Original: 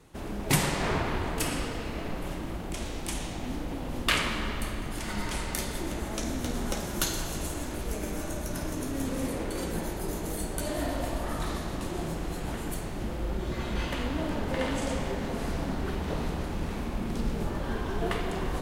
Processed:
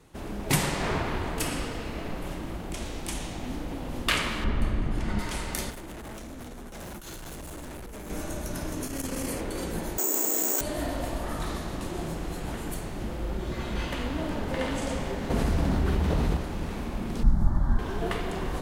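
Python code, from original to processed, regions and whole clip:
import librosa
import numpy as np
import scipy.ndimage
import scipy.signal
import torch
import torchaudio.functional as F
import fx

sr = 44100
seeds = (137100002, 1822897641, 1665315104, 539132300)

y = fx.chain(x, sr, fx.lowpass(hz=2300.0, slope=6),
    fx.low_shelf(hz=270.0, db=9.0), at=(4.44, 5.19))
y = fx.chain(y, sr, fx.peak_eq(hz=5100.0, db=-5.0, octaves=1.3),
    fx.over_compress(threshold_db=-34.0, ratio=-0.5),
    fx.clip_hard(threshold_db=-38.0), at=(5.7, 8.1))
y = fx.chain(y, sr, fx.high_shelf(hz=2300.0, db=8.0),
    fx.notch(hz=3700.0, q=6.9),
    fx.transformer_sat(knee_hz=130.0), at=(8.83, 9.41))
y = fx.chain(y, sr, fx.steep_highpass(hz=240.0, slope=48),
    fx.resample_bad(factor=6, down='filtered', up='zero_stuff'),
    fx.env_flatten(amount_pct=100), at=(9.98, 10.61))
y = fx.chain(y, sr, fx.highpass(hz=41.0, slope=12),
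    fx.low_shelf(hz=120.0, db=11.0),
    fx.env_flatten(amount_pct=70), at=(15.3, 16.37))
y = fx.chain(y, sr, fx.tilt_eq(slope=-2.5),
    fx.fixed_phaser(hz=1100.0, stages=4), at=(17.23, 17.79))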